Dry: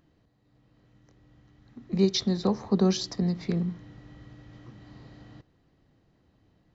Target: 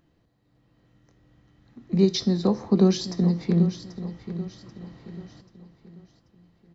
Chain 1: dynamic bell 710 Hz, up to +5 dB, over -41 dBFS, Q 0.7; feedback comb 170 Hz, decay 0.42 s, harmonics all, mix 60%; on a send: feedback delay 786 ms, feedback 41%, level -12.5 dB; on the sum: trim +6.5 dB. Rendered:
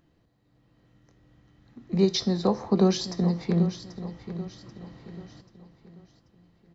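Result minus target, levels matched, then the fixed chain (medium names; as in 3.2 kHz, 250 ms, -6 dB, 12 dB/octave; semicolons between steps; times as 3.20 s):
1 kHz band +5.5 dB
dynamic bell 270 Hz, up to +5 dB, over -41 dBFS, Q 0.7; feedback comb 170 Hz, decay 0.42 s, harmonics all, mix 60%; on a send: feedback delay 786 ms, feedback 41%, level -12.5 dB; on the sum: trim +6.5 dB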